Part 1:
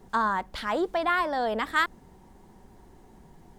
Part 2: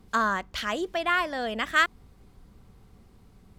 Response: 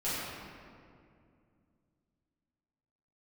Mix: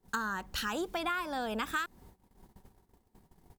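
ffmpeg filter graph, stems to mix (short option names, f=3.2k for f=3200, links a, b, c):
-filter_complex "[0:a]volume=-4dB[a];[1:a]aemphasis=mode=production:type=50fm,adelay=0.4,volume=-6dB[b];[a][b]amix=inputs=2:normalize=0,agate=range=-20dB:threshold=-52dB:ratio=16:detection=peak,acompressor=threshold=-30dB:ratio=10"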